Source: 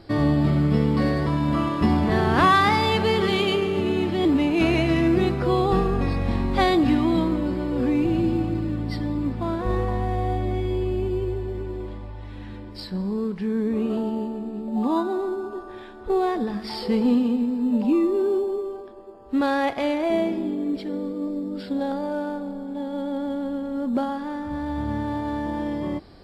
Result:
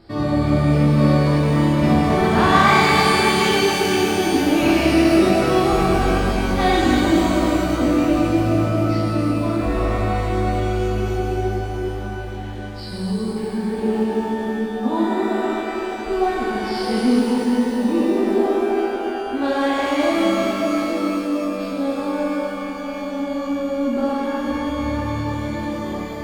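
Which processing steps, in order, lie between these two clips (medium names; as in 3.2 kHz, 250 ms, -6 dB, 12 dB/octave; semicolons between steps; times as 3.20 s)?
pitch-shifted reverb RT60 3.5 s, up +12 st, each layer -8 dB, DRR -7.5 dB; trim -4 dB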